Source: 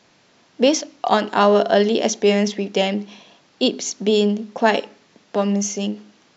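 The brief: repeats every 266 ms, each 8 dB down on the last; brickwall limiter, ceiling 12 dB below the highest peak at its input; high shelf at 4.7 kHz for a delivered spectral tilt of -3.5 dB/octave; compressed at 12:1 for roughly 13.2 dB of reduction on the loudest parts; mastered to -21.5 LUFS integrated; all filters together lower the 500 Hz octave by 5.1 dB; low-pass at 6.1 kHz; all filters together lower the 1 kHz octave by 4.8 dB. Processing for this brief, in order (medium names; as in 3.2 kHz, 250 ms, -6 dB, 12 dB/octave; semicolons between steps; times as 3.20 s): low-pass 6.1 kHz; peaking EQ 500 Hz -5.5 dB; peaking EQ 1 kHz -4.5 dB; treble shelf 4.7 kHz +8.5 dB; compression 12:1, threshold -27 dBFS; peak limiter -25 dBFS; feedback delay 266 ms, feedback 40%, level -8 dB; trim +13.5 dB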